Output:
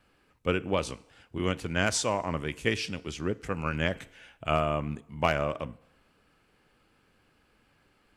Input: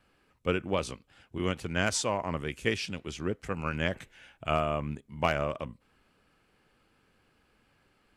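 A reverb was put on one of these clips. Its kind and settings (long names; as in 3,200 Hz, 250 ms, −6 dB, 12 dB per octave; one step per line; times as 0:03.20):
feedback delay network reverb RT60 0.91 s, low-frequency decay 0.75×, high-frequency decay 0.85×, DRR 18 dB
level +1.5 dB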